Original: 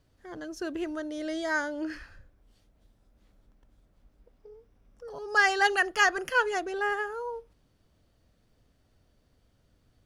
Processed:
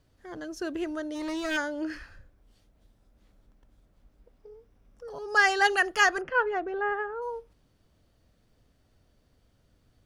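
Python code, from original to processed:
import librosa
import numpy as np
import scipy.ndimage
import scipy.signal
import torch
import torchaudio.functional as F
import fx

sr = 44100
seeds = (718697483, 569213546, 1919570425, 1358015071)

y = fx.lower_of_two(x, sr, delay_ms=0.46, at=(1.14, 1.56), fade=0.02)
y = fx.lowpass(y, sr, hz=1700.0, slope=12, at=(6.2, 7.21), fade=0.02)
y = F.gain(torch.from_numpy(y), 1.0).numpy()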